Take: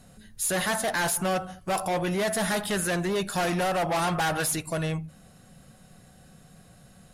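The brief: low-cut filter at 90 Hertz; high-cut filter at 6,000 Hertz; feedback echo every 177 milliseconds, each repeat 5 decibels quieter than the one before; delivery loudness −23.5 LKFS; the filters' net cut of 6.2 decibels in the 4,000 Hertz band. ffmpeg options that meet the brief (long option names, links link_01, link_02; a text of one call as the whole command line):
ffmpeg -i in.wav -af "highpass=90,lowpass=6000,equalizer=frequency=4000:width_type=o:gain=-7.5,aecho=1:1:177|354|531|708|885|1062|1239:0.562|0.315|0.176|0.0988|0.0553|0.031|0.0173,volume=3.5dB" out.wav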